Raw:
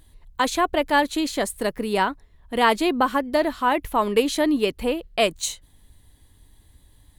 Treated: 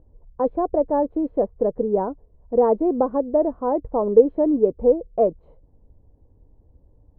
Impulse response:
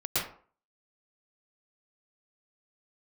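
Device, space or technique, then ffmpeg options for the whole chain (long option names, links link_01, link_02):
under water: -af "lowpass=frequency=780:width=0.5412,lowpass=frequency=780:width=1.3066,equalizer=frequency=490:width_type=o:width=0.44:gain=9.5"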